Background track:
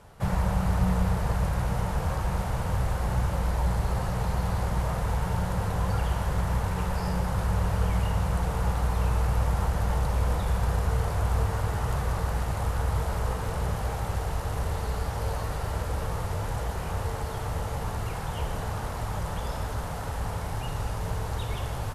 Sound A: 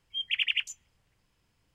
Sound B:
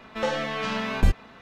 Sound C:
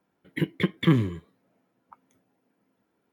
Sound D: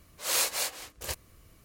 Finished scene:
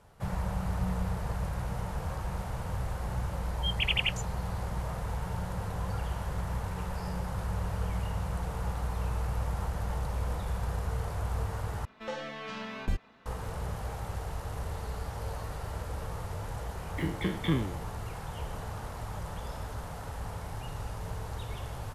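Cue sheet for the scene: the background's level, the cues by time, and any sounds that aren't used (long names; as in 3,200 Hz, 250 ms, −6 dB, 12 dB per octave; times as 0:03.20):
background track −7 dB
0:03.49: mix in A −1 dB
0:11.85: overwrite with B −11 dB
0:16.61: mix in C −9 dB + peak hold with a decay on every bin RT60 0.46 s
not used: D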